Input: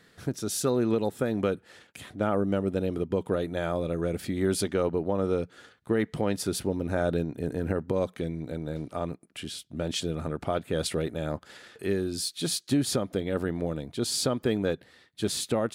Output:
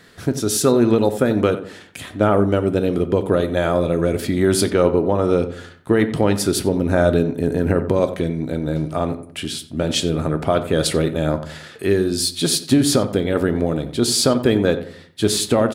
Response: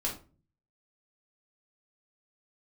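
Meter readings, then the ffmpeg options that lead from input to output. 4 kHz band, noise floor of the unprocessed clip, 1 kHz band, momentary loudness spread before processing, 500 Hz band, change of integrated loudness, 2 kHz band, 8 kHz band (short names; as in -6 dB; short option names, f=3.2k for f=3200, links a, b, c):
+10.5 dB, -61 dBFS, +10.5 dB, 9 LU, +10.5 dB, +10.5 dB, +10.5 dB, +10.5 dB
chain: -filter_complex "[0:a]asplit=2[a][b];[b]adelay=90,lowpass=f=1.9k:p=1,volume=-12dB,asplit=2[c][d];[d]adelay=90,lowpass=f=1.9k:p=1,volume=0.36,asplit=2[e][f];[f]adelay=90,lowpass=f=1.9k:p=1,volume=0.36,asplit=2[g][h];[h]adelay=90,lowpass=f=1.9k:p=1,volume=0.36[i];[a][c][e][g][i]amix=inputs=5:normalize=0,asplit=2[j][k];[1:a]atrim=start_sample=2205[l];[k][l]afir=irnorm=-1:irlink=0,volume=-12dB[m];[j][m]amix=inputs=2:normalize=0,volume=8.5dB"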